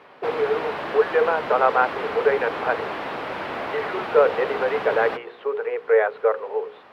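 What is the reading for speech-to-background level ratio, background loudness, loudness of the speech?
7.0 dB, -30.0 LUFS, -23.0 LUFS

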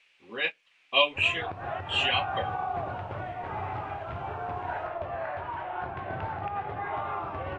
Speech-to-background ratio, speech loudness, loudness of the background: 7.5 dB, -27.0 LUFS, -34.5 LUFS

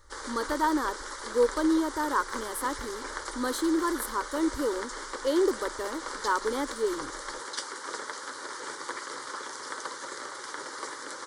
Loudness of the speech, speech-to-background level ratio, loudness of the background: -30.0 LUFS, 7.5 dB, -37.5 LUFS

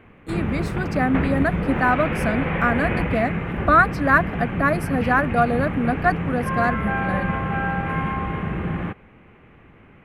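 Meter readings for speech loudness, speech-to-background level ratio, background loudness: -22.5 LUFS, 3.0 dB, -25.5 LUFS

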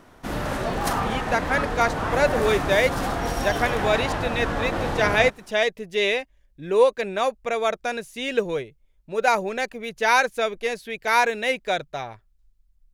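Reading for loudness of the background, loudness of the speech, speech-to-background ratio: -27.0 LUFS, -23.5 LUFS, 3.5 dB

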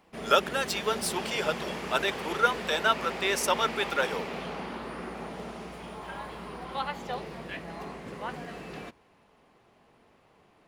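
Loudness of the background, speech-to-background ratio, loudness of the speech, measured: -37.0 LUFS, 9.0 dB, -28.0 LUFS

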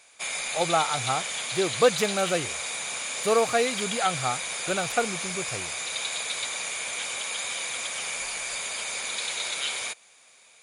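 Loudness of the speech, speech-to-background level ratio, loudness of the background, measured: -27.5 LUFS, 2.0 dB, -29.5 LUFS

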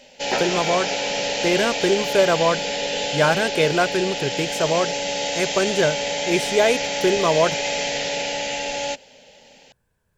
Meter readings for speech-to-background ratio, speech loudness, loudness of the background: 2.0 dB, -22.0 LUFS, -24.0 LUFS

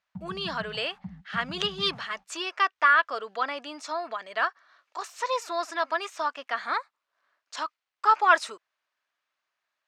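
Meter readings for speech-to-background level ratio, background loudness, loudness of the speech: 16.0 dB, -43.5 LUFS, -27.5 LUFS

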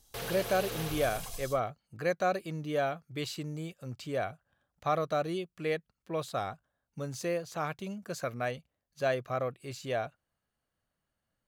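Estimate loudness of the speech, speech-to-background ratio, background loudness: -34.5 LUFS, 4.5 dB, -39.0 LUFS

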